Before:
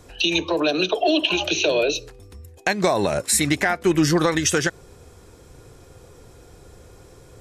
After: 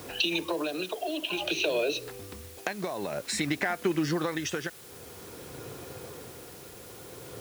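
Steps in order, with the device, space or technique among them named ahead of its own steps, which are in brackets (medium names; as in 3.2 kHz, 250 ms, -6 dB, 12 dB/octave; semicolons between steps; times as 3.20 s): medium wave at night (band-pass 140–4400 Hz; compression 6:1, threshold -32 dBFS, peak gain reduction 16.5 dB; tremolo 0.52 Hz, depth 51%; whistle 10 kHz -67 dBFS; white noise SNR 17 dB); trim +6.5 dB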